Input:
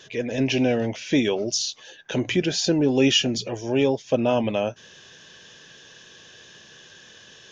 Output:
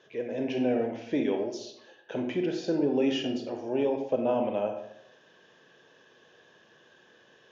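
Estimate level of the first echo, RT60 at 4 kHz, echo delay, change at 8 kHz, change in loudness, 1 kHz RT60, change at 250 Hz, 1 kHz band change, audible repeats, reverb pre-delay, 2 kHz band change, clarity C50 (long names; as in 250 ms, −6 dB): no echo audible, 0.50 s, no echo audible, can't be measured, −7.0 dB, 0.75 s, −6.5 dB, −4.0 dB, no echo audible, 29 ms, −12.0 dB, 6.0 dB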